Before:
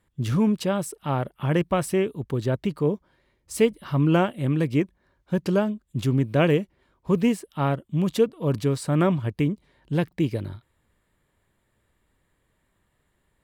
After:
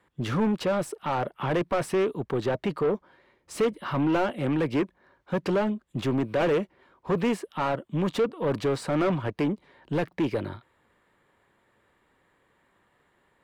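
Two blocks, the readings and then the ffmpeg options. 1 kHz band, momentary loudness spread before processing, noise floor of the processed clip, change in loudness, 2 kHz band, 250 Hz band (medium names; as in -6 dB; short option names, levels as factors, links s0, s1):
+0.5 dB, 7 LU, -69 dBFS, -3.0 dB, -0.5 dB, -4.0 dB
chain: -filter_complex "[0:a]bandreject=f=630:w=15,acrossover=split=230[s0][s1];[s0]acompressor=threshold=0.0282:ratio=1.5[s2];[s2][s1]amix=inputs=2:normalize=0,asplit=2[s3][s4];[s4]highpass=f=720:p=1,volume=20,asoftclip=type=tanh:threshold=0.422[s5];[s3][s5]amix=inputs=2:normalize=0,lowpass=f=1200:p=1,volume=0.501,volume=0.422"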